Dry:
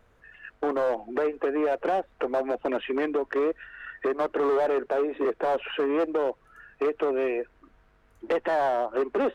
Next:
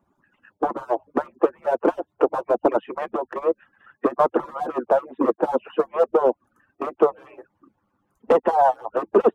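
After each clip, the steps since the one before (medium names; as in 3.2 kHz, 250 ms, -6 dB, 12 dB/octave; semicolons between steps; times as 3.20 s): harmonic-percussive separation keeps percussive; ten-band graphic EQ 250 Hz +9 dB, 1 kHz +7 dB, 2 kHz -9 dB, 4 kHz -6 dB; upward expansion 1.5:1, over -43 dBFS; trim +8.5 dB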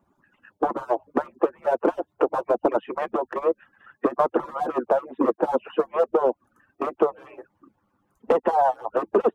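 compression 3:1, threshold -18 dBFS, peak gain reduction 6 dB; trim +1 dB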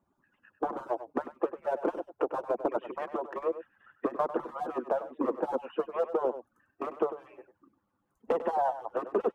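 delay 98 ms -12.5 dB; trim -8.5 dB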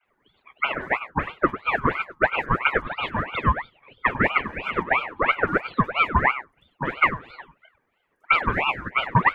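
phase dispersion highs, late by 56 ms, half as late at 2.1 kHz; reverberation RT60 0.30 s, pre-delay 3 ms, DRR 14.5 dB; ring modulator with a swept carrier 1.2 kHz, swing 55%, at 3 Hz; trim +3.5 dB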